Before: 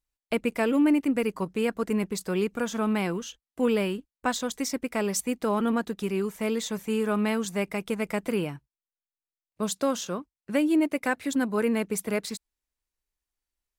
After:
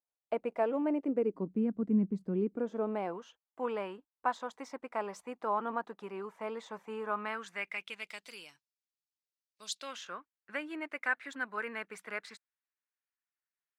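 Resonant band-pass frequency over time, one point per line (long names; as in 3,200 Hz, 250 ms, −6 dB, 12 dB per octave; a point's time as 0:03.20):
resonant band-pass, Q 2
0:00.84 700 Hz
0:01.60 210 Hz
0:02.25 210 Hz
0:03.28 940 Hz
0:07.04 940 Hz
0:08.36 5,000 Hz
0:09.64 5,000 Hz
0:10.09 1,600 Hz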